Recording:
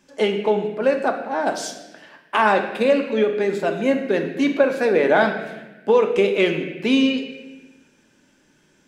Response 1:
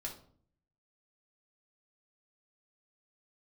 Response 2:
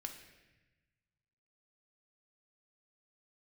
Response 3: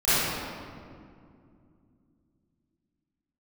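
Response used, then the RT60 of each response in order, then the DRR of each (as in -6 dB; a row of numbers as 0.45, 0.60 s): 2; 0.55, 1.1, 2.4 s; -1.5, 4.0, -18.0 dB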